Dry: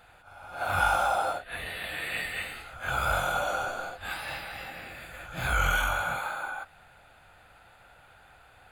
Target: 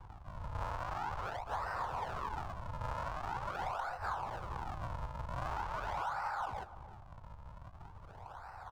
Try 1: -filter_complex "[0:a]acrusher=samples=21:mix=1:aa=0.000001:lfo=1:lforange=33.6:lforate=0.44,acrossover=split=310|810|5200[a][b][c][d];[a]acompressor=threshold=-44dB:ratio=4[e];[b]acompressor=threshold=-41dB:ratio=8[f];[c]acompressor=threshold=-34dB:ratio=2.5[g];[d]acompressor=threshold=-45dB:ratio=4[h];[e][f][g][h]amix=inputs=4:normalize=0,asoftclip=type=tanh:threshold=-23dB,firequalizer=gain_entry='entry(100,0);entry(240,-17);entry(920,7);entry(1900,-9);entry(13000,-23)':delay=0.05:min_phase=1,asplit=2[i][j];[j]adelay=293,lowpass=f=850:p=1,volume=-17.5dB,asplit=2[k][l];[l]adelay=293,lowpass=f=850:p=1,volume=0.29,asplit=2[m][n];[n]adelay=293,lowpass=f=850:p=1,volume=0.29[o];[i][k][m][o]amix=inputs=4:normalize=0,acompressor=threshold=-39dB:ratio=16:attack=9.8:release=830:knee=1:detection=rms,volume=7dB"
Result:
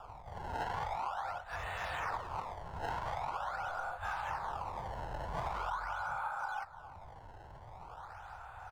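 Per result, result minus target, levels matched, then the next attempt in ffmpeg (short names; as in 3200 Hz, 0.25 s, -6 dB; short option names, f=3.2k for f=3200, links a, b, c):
soft clip: distortion -11 dB; decimation with a swept rate: distortion -7 dB
-filter_complex "[0:a]acrusher=samples=21:mix=1:aa=0.000001:lfo=1:lforange=33.6:lforate=0.44,acrossover=split=310|810|5200[a][b][c][d];[a]acompressor=threshold=-44dB:ratio=4[e];[b]acompressor=threshold=-41dB:ratio=8[f];[c]acompressor=threshold=-34dB:ratio=2.5[g];[d]acompressor=threshold=-45dB:ratio=4[h];[e][f][g][h]amix=inputs=4:normalize=0,asoftclip=type=tanh:threshold=-32dB,firequalizer=gain_entry='entry(100,0);entry(240,-17);entry(920,7);entry(1900,-9);entry(13000,-23)':delay=0.05:min_phase=1,asplit=2[i][j];[j]adelay=293,lowpass=f=850:p=1,volume=-17.5dB,asplit=2[k][l];[l]adelay=293,lowpass=f=850:p=1,volume=0.29,asplit=2[m][n];[n]adelay=293,lowpass=f=850:p=1,volume=0.29[o];[i][k][m][o]amix=inputs=4:normalize=0,acompressor=threshold=-39dB:ratio=16:attack=9.8:release=830:knee=1:detection=rms,volume=7dB"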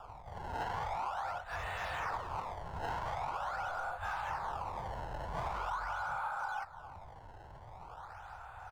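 decimation with a swept rate: distortion -7 dB
-filter_complex "[0:a]acrusher=samples=65:mix=1:aa=0.000001:lfo=1:lforange=104:lforate=0.44,acrossover=split=310|810|5200[a][b][c][d];[a]acompressor=threshold=-44dB:ratio=4[e];[b]acompressor=threshold=-41dB:ratio=8[f];[c]acompressor=threshold=-34dB:ratio=2.5[g];[d]acompressor=threshold=-45dB:ratio=4[h];[e][f][g][h]amix=inputs=4:normalize=0,asoftclip=type=tanh:threshold=-32dB,firequalizer=gain_entry='entry(100,0);entry(240,-17);entry(920,7);entry(1900,-9);entry(13000,-23)':delay=0.05:min_phase=1,asplit=2[i][j];[j]adelay=293,lowpass=f=850:p=1,volume=-17.5dB,asplit=2[k][l];[l]adelay=293,lowpass=f=850:p=1,volume=0.29,asplit=2[m][n];[n]adelay=293,lowpass=f=850:p=1,volume=0.29[o];[i][k][m][o]amix=inputs=4:normalize=0,acompressor=threshold=-39dB:ratio=16:attack=9.8:release=830:knee=1:detection=rms,volume=7dB"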